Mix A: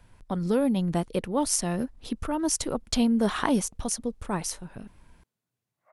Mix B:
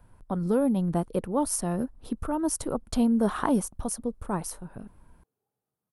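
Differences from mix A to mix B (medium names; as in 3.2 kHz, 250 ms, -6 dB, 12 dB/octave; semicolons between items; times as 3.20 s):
background: entry +1.05 s; master: add high-order bell 3.7 kHz -10 dB 2.3 oct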